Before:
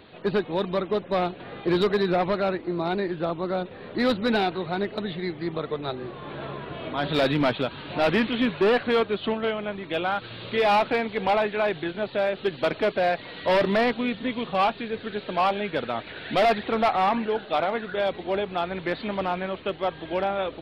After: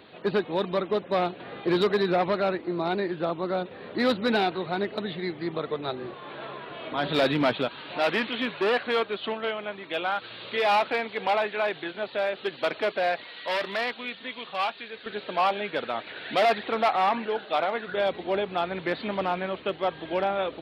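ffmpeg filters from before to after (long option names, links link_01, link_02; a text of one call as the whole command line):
ffmpeg -i in.wav -af "asetnsamples=nb_out_samples=441:pad=0,asendcmd='6.14 highpass f 560;6.92 highpass f 180;7.68 highpass f 580;13.24 highpass f 1500;15.06 highpass f 410;17.88 highpass f 150',highpass=frequency=180:poles=1" out.wav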